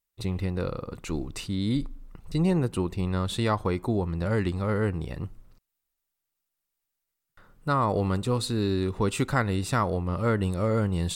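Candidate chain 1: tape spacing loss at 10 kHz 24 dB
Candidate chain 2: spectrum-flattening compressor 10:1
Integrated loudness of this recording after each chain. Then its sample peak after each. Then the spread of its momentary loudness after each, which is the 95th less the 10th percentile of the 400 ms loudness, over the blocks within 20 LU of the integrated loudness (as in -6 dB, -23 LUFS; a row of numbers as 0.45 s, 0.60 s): -29.0 LUFS, -33.0 LUFS; -12.5 dBFS, -10.5 dBFS; 8 LU, 8 LU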